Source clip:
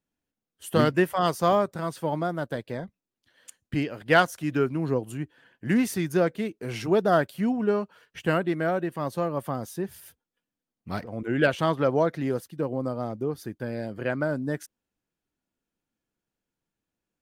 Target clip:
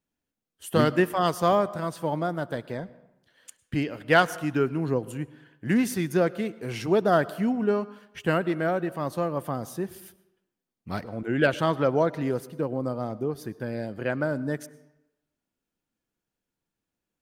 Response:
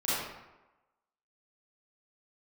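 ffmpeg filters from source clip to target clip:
-filter_complex "[0:a]asplit=2[link_01][link_02];[1:a]atrim=start_sample=2205,asetrate=48510,aresample=44100,adelay=69[link_03];[link_02][link_03]afir=irnorm=-1:irlink=0,volume=-27dB[link_04];[link_01][link_04]amix=inputs=2:normalize=0"

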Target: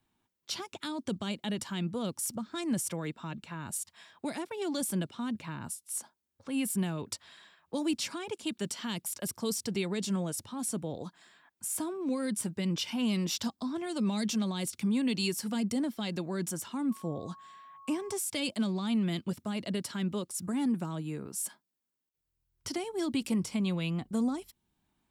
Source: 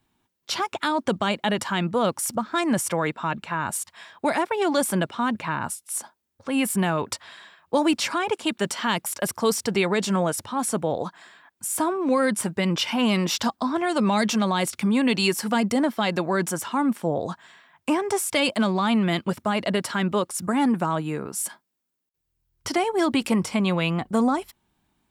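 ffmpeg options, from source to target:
ffmpeg -i in.wav -filter_complex "[0:a]acrossover=split=380|3000[link_01][link_02][link_03];[link_02]acompressor=threshold=-59dB:ratio=1.5[link_04];[link_01][link_04][link_03]amix=inputs=3:normalize=0,asettb=1/sr,asplit=3[link_05][link_06][link_07];[link_05]atrim=end=16.914[link_08];[link_06]atrim=start=16.91:end=18.14,asetpts=PTS-STARTPTS,afade=type=in:duration=0.004:curve=qsin,afade=type=out:start_time=1.226:duration=0.004:curve=qsin,aeval=exprs='val(0)+0.00708*sin(2*PI*1100*n/s)':channel_layout=same[link_09];[link_07]atrim=start=18.136[link_10];[link_08][link_09]acrossfade=duration=0.004:curve1=hsin:curve2=qsin[link_11];[link_11][link_10]acrossfade=duration=0.004:curve1=qsin:curve2=hsin,volume=-6.5dB" out.wav

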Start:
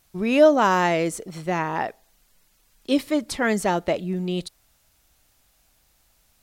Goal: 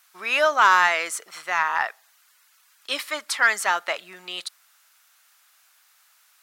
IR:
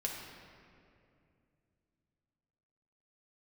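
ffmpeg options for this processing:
-af "highpass=frequency=1300:width_type=q:width=2,asoftclip=type=tanh:threshold=-9.5dB,volume=4dB"

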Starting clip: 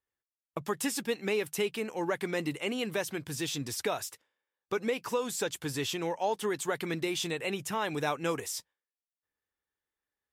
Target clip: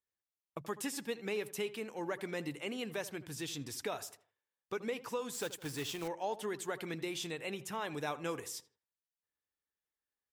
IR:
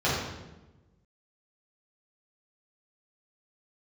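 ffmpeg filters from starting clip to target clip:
-filter_complex "[0:a]asplit=2[link_01][link_02];[link_02]adelay=80,lowpass=frequency=1800:poles=1,volume=-15dB,asplit=2[link_03][link_04];[link_04]adelay=80,lowpass=frequency=1800:poles=1,volume=0.4,asplit=2[link_05][link_06];[link_06]adelay=80,lowpass=frequency=1800:poles=1,volume=0.4,asplit=2[link_07][link_08];[link_08]adelay=80,lowpass=frequency=1800:poles=1,volume=0.4[link_09];[link_01][link_03][link_05][link_07][link_09]amix=inputs=5:normalize=0,asettb=1/sr,asplit=3[link_10][link_11][link_12];[link_10]atrim=end=5.334[link_13];[link_11]atrim=start=5.33:end=6.08,asetpts=PTS-STARTPTS,afade=type=in:duration=0.004:curve=qsin,afade=type=out:start_time=0.746:duration=0.004:curve=qsin,acrusher=bits=2:mode=log:mix=0:aa=0.000001[link_14];[link_12]atrim=start=6.076[link_15];[link_13][link_14]acrossfade=duration=0.004:curve1=hsin:curve2=qsin[link_16];[link_16][link_15]acrossfade=duration=0.004:curve1=qsin:curve2=hsin,volume=-7dB"

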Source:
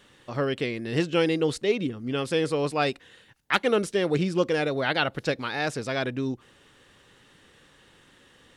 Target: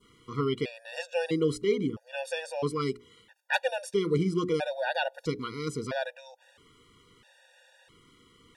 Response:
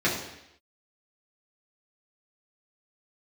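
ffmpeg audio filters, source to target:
-af "adynamicequalizer=threshold=0.00794:dfrequency=2200:dqfactor=0.72:tfrequency=2200:tqfactor=0.72:attack=5:release=100:ratio=0.375:range=3:mode=cutabove:tftype=bell,bandreject=frequency=60:width_type=h:width=6,bandreject=frequency=120:width_type=h:width=6,bandreject=frequency=180:width_type=h:width=6,bandreject=frequency=240:width_type=h:width=6,bandreject=frequency=300:width_type=h:width=6,bandreject=frequency=360:width_type=h:width=6,bandreject=frequency=420:width_type=h:width=6,afftfilt=real='re*gt(sin(2*PI*0.76*pts/sr)*(1-2*mod(floor(b*sr/1024/480),2)),0)':imag='im*gt(sin(2*PI*0.76*pts/sr)*(1-2*mod(floor(b*sr/1024/480),2)),0)':win_size=1024:overlap=0.75"

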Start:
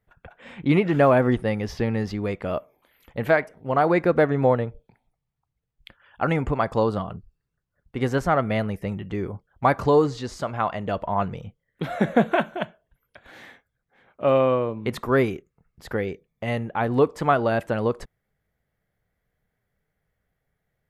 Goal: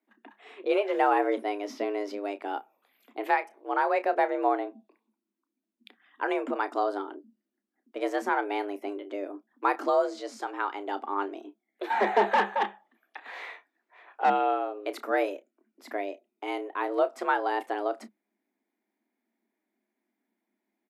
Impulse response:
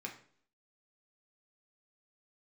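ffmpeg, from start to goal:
-filter_complex "[0:a]asplit=2[link_01][link_02];[link_02]adelay=31,volume=-13dB[link_03];[link_01][link_03]amix=inputs=2:normalize=0,asettb=1/sr,asplit=3[link_04][link_05][link_06];[link_04]atrim=end=11.904[link_07];[link_05]atrim=start=11.9:end=14.3,asetpts=PTS-STARTPTS,afade=type=in:duration=0.004:curve=qsin,afade=type=out:start_time=2.396:duration=0.004:curve=qsin,asplit=2[link_08][link_09];[link_09]highpass=frequency=720:poles=1,volume=22dB,asoftclip=type=tanh:threshold=-6.5dB[link_10];[link_08][link_10]amix=inputs=2:normalize=0,lowpass=frequency=1400:poles=1,volume=-6dB[link_11];[link_06]atrim=start=14.296[link_12];[link_07][link_11]acrossfade=duration=0.004:curve1=hsin:curve2=qsin[link_13];[link_13][link_12]acrossfade=duration=0.004:curve1=qsin:curve2=hsin,afreqshift=200,volume=-6.5dB"

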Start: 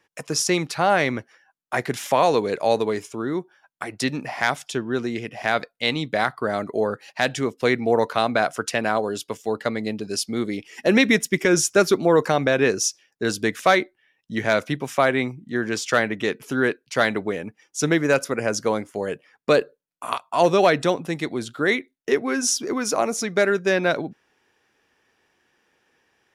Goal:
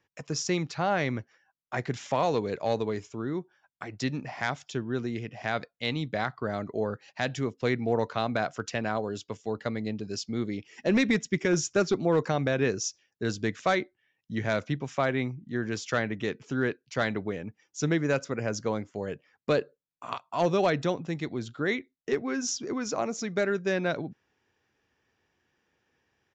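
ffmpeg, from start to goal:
ffmpeg -i in.wav -af "equalizer=frequency=87:width=0.56:gain=10.5,aresample=16000,aeval=exprs='clip(val(0),-1,0.282)':channel_layout=same,aresample=44100,volume=-9dB" out.wav

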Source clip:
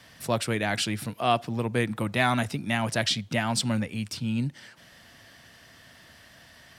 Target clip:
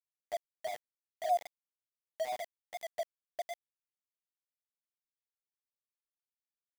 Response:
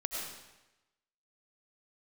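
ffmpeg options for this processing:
-filter_complex "[0:a]asuperpass=centerf=670:order=20:qfactor=4.8,asplit=2[link_01][link_02];[1:a]atrim=start_sample=2205,lowpass=2100[link_03];[link_02][link_03]afir=irnorm=-1:irlink=0,volume=-19dB[link_04];[link_01][link_04]amix=inputs=2:normalize=0,aeval=exprs='val(0)*gte(abs(val(0)),0.0224)':channel_layout=same,volume=-5dB"

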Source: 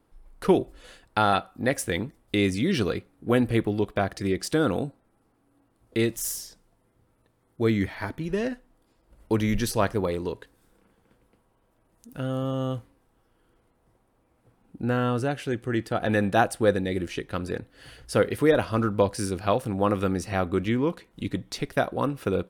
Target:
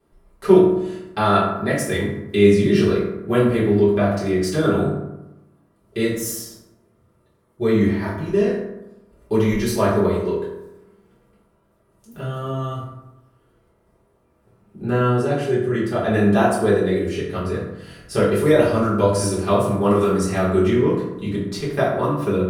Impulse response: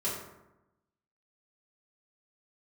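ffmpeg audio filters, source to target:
-filter_complex "[0:a]asettb=1/sr,asplit=3[link_01][link_02][link_03];[link_01]atrim=end=18.324[link_04];[link_02]atrim=start=18.32:end=20.7,asetpts=PTS-STARTPTS,afade=type=in:duration=0.004:curve=qsin,afade=type=out:start_time=2.376:duration=0.004:curve=qsin,equalizer=frequency=8600:width=0.56:gain=6.5[link_05];[link_03]atrim=start=20.696[link_06];[link_04][link_05]acrossfade=duration=0.004:curve1=hsin:curve2=qsin[link_07];[link_07][link_06]acrossfade=duration=0.004:curve1=qsin:curve2=hsin[link_08];[1:a]atrim=start_sample=2205[link_09];[link_08][link_09]afir=irnorm=-1:irlink=0,volume=-1dB"

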